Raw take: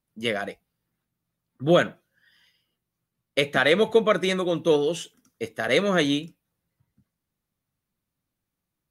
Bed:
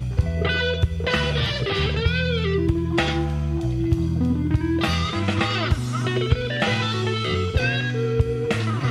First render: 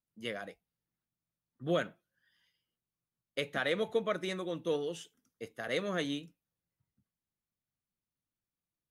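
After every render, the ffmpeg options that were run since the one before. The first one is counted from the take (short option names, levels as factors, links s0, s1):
-af "volume=0.237"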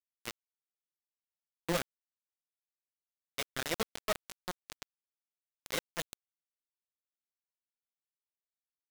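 -af "flanger=delay=3.5:depth=6.4:regen=5:speed=1.3:shape=triangular,acrusher=bits=4:mix=0:aa=0.000001"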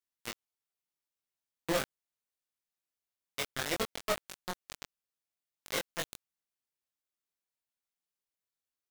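-filter_complex "[0:a]asplit=2[s0][s1];[s1]adelay=21,volume=0.708[s2];[s0][s2]amix=inputs=2:normalize=0"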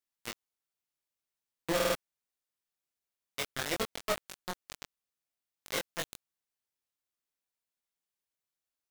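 -filter_complex "[0:a]asplit=5[s0][s1][s2][s3][s4];[s0]atrim=end=1.802[s5];[s1]atrim=start=1.748:end=1.802[s6];[s2]atrim=start=1.748:end=1.802[s7];[s3]atrim=start=1.748:end=1.802[s8];[s4]atrim=start=1.948[s9];[s5][s6]acrossfade=d=0.004:c1=hsin:c2=hsin[s10];[s10][s7]acrossfade=d=0.004:c1=hsin:c2=hsin[s11];[s11][s8]acrossfade=d=0.004:c1=hsin:c2=hsin[s12];[s12][s9]acrossfade=d=0.004:c1=hsin:c2=hsin"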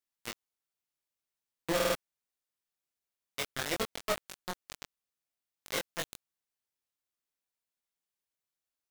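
-af anull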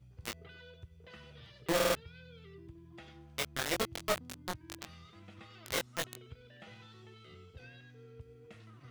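-filter_complex "[1:a]volume=0.0266[s0];[0:a][s0]amix=inputs=2:normalize=0"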